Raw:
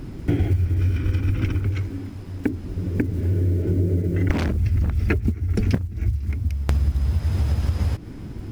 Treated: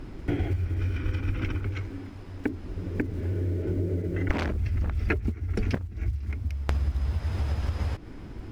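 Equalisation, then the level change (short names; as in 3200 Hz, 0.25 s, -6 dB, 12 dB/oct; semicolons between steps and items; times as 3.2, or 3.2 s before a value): LPF 3100 Hz 6 dB/oct; bell 140 Hz -9.5 dB 2.6 oct; 0.0 dB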